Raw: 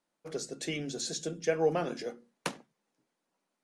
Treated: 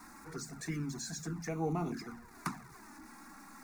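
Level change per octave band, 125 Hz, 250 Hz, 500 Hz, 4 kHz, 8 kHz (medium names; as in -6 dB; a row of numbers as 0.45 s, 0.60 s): +3.5 dB, 0.0 dB, -11.5 dB, -9.5 dB, -5.0 dB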